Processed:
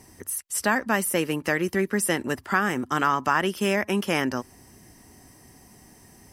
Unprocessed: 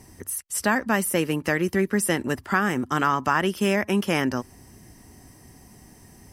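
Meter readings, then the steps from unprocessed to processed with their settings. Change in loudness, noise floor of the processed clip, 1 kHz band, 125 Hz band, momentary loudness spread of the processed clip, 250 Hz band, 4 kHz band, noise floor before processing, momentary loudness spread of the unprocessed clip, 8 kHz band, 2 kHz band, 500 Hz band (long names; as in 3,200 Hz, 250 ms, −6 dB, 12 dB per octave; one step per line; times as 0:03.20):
−1.0 dB, −53 dBFS, 0.0 dB, −3.5 dB, 5 LU, −2.5 dB, 0.0 dB, −51 dBFS, 6 LU, 0.0 dB, 0.0 dB, −1.0 dB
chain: low-shelf EQ 200 Hz −6 dB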